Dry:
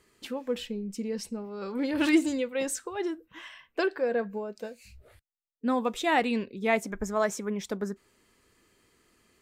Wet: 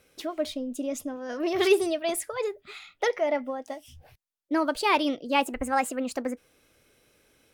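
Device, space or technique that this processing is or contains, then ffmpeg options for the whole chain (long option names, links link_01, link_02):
nightcore: -af "asetrate=55125,aresample=44100,volume=2dB"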